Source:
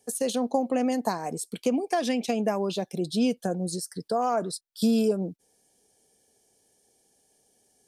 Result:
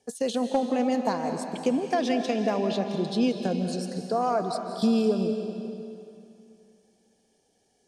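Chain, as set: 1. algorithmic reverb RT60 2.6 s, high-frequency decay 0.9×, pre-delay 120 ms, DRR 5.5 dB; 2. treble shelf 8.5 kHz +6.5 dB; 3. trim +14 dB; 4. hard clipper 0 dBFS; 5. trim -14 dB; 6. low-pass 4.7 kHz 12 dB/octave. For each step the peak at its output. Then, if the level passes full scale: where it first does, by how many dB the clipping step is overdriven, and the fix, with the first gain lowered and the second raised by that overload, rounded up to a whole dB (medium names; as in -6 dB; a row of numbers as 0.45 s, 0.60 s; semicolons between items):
-11.0 dBFS, -11.0 dBFS, +3.0 dBFS, 0.0 dBFS, -14.0 dBFS, -14.0 dBFS; step 3, 3.0 dB; step 3 +11 dB, step 5 -11 dB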